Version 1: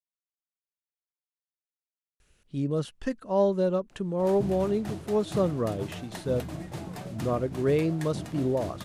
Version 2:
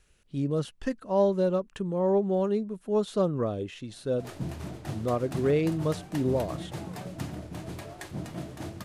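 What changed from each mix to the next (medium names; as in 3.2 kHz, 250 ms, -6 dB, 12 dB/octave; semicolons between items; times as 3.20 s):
speech: entry -2.20 s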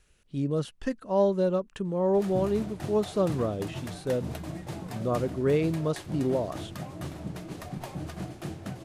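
background: entry -2.05 s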